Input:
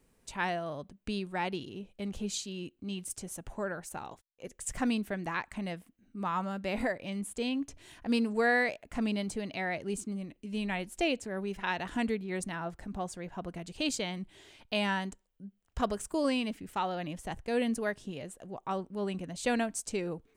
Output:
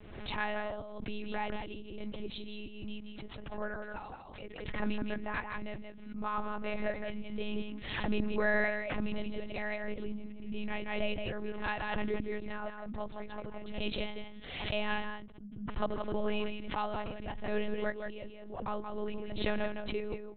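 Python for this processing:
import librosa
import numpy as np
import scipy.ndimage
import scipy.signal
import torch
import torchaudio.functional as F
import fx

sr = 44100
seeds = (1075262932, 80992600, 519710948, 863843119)

p1 = x + fx.echo_single(x, sr, ms=169, db=-6.0, dry=0)
p2 = fx.lpc_monotone(p1, sr, seeds[0], pitch_hz=210.0, order=10)
p3 = fx.pre_swell(p2, sr, db_per_s=52.0)
y = p3 * 10.0 ** (-2.5 / 20.0)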